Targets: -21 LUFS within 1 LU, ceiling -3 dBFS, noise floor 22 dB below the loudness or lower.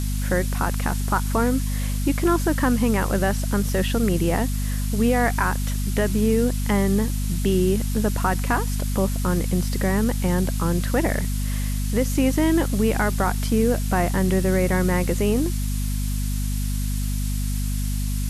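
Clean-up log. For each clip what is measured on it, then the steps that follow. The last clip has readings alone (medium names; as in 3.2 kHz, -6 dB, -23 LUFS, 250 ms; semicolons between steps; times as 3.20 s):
hum 50 Hz; highest harmonic 250 Hz; hum level -22 dBFS; noise floor -24 dBFS; noise floor target -45 dBFS; loudness -23.0 LUFS; peak level -8.0 dBFS; loudness target -21.0 LUFS
-> hum notches 50/100/150/200/250 Hz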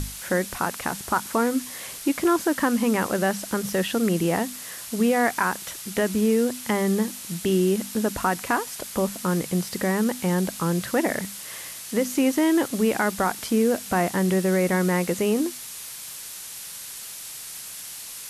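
hum not found; noise floor -38 dBFS; noise floor target -47 dBFS
-> noise print and reduce 9 dB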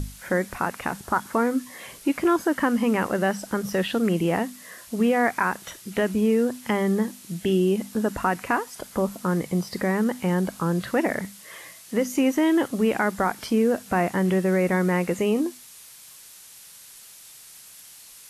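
noise floor -47 dBFS; loudness -24.5 LUFS; peak level -9.0 dBFS; loudness target -21.0 LUFS
-> trim +3.5 dB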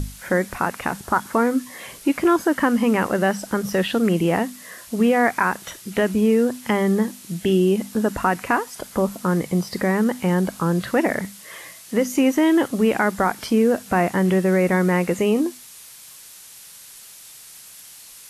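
loudness -21.0 LUFS; peak level -5.5 dBFS; noise floor -43 dBFS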